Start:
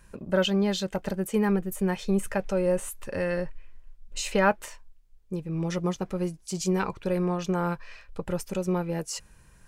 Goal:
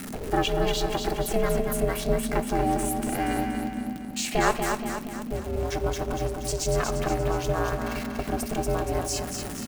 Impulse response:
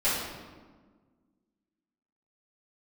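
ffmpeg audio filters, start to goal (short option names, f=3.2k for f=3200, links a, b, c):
-filter_complex "[0:a]aeval=exprs='val(0)+0.5*0.015*sgn(val(0))':c=same,highshelf=f=10k:g=4.5,aeval=exprs='val(0)*sin(2*PI*230*n/s)':c=same,asplit=2[a][b];[b]acompressor=threshold=-40dB:ratio=6,volume=0.5dB[c];[a][c]amix=inputs=2:normalize=0,aecho=1:1:237|474|711|948|1185|1422:0.531|0.271|0.138|0.0704|0.0359|0.0183,asplit=2[d][e];[1:a]atrim=start_sample=2205[f];[e][f]afir=irnorm=-1:irlink=0,volume=-25dB[g];[d][g]amix=inputs=2:normalize=0"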